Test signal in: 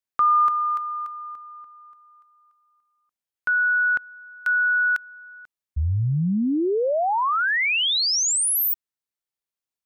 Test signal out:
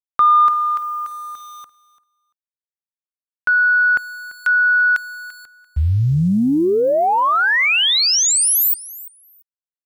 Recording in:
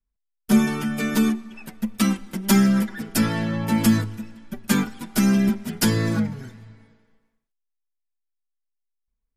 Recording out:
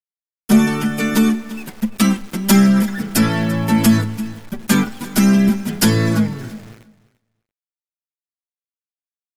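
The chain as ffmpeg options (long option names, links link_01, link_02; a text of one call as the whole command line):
ffmpeg -i in.wav -af "acontrast=61,aeval=exprs='val(0)*gte(abs(val(0)),0.0141)':channel_layout=same,aecho=1:1:341|682:0.119|0.019" out.wav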